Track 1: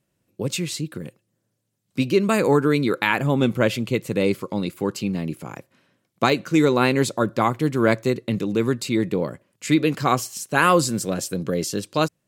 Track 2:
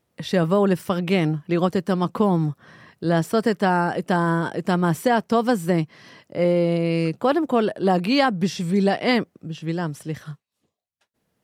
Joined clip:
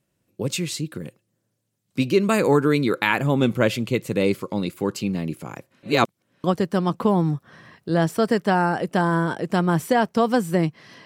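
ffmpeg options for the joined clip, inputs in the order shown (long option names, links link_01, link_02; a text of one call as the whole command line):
ffmpeg -i cue0.wav -i cue1.wav -filter_complex "[0:a]apad=whole_dur=11.05,atrim=end=11.05,asplit=2[link_01][link_02];[link_01]atrim=end=5.832[link_03];[link_02]atrim=start=5.828:end=6.442,asetpts=PTS-STARTPTS,areverse[link_04];[1:a]atrim=start=1.588:end=6.2[link_05];[link_03][link_04]acrossfade=duration=0.004:curve1=hsin:curve2=hsin[link_06];[link_06][link_05]acrossfade=duration=0.004:curve1=hsin:curve2=hsin" out.wav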